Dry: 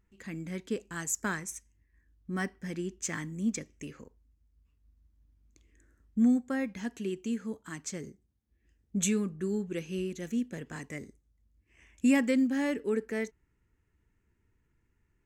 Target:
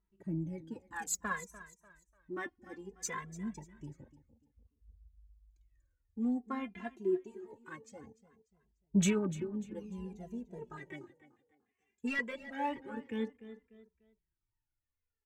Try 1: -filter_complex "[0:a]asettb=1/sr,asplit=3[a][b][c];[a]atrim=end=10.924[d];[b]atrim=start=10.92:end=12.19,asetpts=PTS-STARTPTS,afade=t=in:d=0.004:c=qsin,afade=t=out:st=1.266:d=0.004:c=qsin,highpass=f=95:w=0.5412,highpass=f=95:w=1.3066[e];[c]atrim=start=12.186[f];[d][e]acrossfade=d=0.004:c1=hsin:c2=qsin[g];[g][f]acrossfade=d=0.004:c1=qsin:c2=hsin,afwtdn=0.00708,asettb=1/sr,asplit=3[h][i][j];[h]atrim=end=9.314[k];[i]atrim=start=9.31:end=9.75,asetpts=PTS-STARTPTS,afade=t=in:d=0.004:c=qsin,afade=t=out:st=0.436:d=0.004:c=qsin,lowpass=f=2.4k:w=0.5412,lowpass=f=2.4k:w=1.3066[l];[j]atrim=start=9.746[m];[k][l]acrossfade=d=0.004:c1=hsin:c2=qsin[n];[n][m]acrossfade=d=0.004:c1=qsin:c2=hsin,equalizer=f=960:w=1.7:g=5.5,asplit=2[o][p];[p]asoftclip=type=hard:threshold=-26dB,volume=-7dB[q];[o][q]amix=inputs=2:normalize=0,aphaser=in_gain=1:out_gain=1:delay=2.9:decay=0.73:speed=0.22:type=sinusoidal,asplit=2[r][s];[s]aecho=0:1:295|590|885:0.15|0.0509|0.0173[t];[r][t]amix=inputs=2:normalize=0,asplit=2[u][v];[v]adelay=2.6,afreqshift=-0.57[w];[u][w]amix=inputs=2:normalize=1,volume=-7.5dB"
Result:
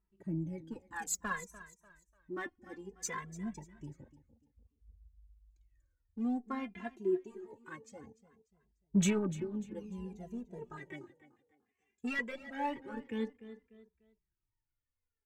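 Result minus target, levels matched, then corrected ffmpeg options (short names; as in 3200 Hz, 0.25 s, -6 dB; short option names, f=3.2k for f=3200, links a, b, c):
hard clip: distortion +15 dB
-filter_complex "[0:a]asettb=1/sr,asplit=3[a][b][c];[a]atrim=end=10.924[d];[b]atrim=start=10.92:end=12.19,asetpts=PTS-STARTPTS,afade=t=in:d=0.004:c=qsin,afade=t=out:st=1.266:d=0.004:c=qsin,highpass=f=95:w=0.5412,highpass=f=95:w=1.3066[e];[c]atrim=start=12.186[f];[d][e]acrossfade=d=0.004:c1=hsin:c2=qsin[g];[g][f]acrossfade=d=0.004:c1=qsin:c2=hsin,afwtdn=0.00708,asettb=1/sr,asplit=3[h][i][j];[h]atrim=end=9.314[k];[i]atrim=start=9.31:end=9.75,asetpts=PTS-STARTPTS,afade=t=in:d=0.004:c=qsin,afade=t=out:st=0.436:d=0.004:c=qsin,lowpass=f=2.4k:w=0.5412,lowpass=f=2.4k:w=1.3066[l];[j]atrim=start=9.746[m];[k][l]acrossfade=d=0.004:c1=hsin:c2=qsin[n];[n][m]acrossfade=d=0.004:c1=qsin:c2=hsin,equalizer=f=960:w=1.7:g=5.5,asplit=2[o][p];[p]asoftclip=type=hard:threshold=-19dB,volume=-7dB[q];[o][q]amix=inputs=2:normalize=0,aphaser=in_gain=1:out_gain=1:delay=2.9:decay=0.73:speed=0.22:type=sinusoidal,asplit=2[r][s];[s]aecho=0:1:295|590|885:0.15|0.0509|0.0173[t];[r][t]amix=inputs=2:normalize=0,asplit=2[u][v];[v]adelay=2.6,afreqshift=-0.57[w];[u][w]amix=inputs=2:normalize=1,volume=-7.5dB"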